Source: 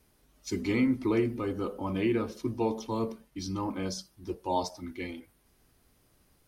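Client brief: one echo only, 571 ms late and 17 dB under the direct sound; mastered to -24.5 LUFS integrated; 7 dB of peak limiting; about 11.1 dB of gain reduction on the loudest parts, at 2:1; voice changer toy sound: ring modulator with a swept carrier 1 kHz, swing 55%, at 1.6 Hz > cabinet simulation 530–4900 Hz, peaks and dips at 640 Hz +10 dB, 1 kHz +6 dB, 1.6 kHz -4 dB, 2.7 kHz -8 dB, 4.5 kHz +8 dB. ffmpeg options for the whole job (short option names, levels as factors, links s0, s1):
-af "acompressor=threshold=0.00708:ratio=2,alimiter=level_in=3.16:limit=0.0631:level=0:latency=1,volume=0.316,aecho=1:1:571:0.141,aeval=exprs='val(0)*sin(2*PI*1000*n/s+1000*0.55/1.6*sin(2*PI*1.6*n/s))':c=same,highpass=530,equalizer=f=640:t=q:w=4:g=10,equalizer=f=1000:t=q:w=4:g=6,equalizer=f=1600:t=q:w=4:g=-4,equalizer=f=2700:t=q:w=4:g=-8,equalizer=f=4500:t=q:w=4:g=8,lowpass=f=4900:w=0.5412,lowpass=f=4900:w=1.3066,volume=10"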